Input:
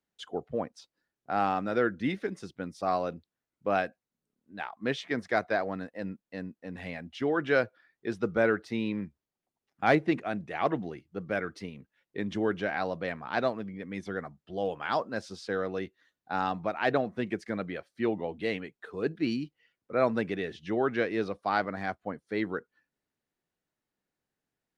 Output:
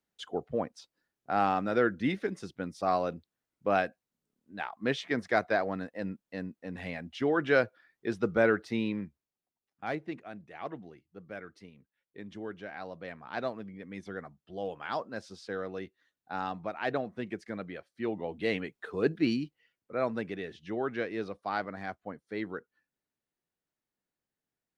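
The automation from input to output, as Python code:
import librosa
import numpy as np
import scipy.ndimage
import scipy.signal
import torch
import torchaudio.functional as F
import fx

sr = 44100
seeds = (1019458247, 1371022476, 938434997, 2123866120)

y = fx.gain(x, sr, db=fx.line((8.79, 0.5), (9.9, -11.5), (12.66, -11.5), (13.56, -5.0), (18.03, -5.0), (18.64, 3.0), (19.15, 3.0), (19.94, -5.0)))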